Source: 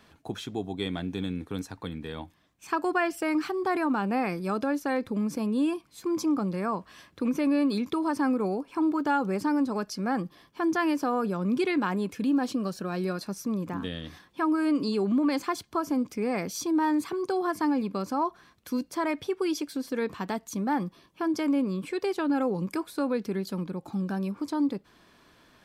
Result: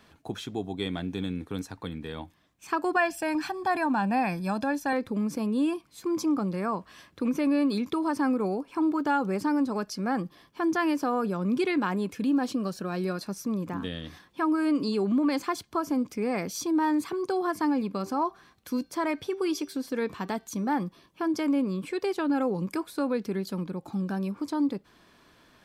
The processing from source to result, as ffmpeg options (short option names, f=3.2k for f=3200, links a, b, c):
-filter_complex "[0:a]asettb=1/sr,asplit=3[a][b][c];[a]atrim=end=2.964[d];[b]atrim=start=2.96:end=4.93,asetpts=PTS-STARTPTS,afade=t=in:d=0.004:c=qsin,afade=t=out:st=1.966:d=0.004:c=qsin,aecho=1:1:1.2:0.65,atrim=end_sample=86877[e];[c]atrim=start=4.926[f];[d][e]acrossfade=d=0.004:c1=hsin:c2=qsin[g];[g][f]acrossfade=d=0.004:c1=qsin:c2=hsin,asettb=1/sr,asplit=3[h][i][j];[h]atrim=end=17.924[k];[i]atrim=start=17.92:end=20.72,asetpts=PTS-STARTPTS,afade=t=in:d=0.004:c=qsin,afade=t=out:st=2.796:d=0.004:c=qsin,bandreject=f=388.2:t=h:w=4,bandreject=f=776.4:t=h:w=4,bandreject=f=1.1646k:t=h:w=4,bandreject=f=1.5528k:t=h:w=4,bandreject=f=1.941k:t=h:w=4,bandreject=f=2.3292k:t=h:w=4,bandreject=f=2.7174k:t=h:w=4,bandreject=f=3.1056k:t=h:w=4,bandreject=f=3.4938k:t=h:w=4,bandreject=f=3.882k:t=h:w=4,bandreject=f=4.2702k:t=h:w=4,bandreject=f=4.6584k:t=h:w=4,bandreject=f=5.0466k:t=h:w=4,bandreject=f=5.4348k:t=h:w=4,bandreject=f=5.823k:t=h:w=4[l];[j]atrim=start=20.716[m];[k][l]acrossfade=d=0.004:c1=hsin:c2=qsin[n];[n][m]acrossfade=d=0.004:c1=qsin:c2=hsin"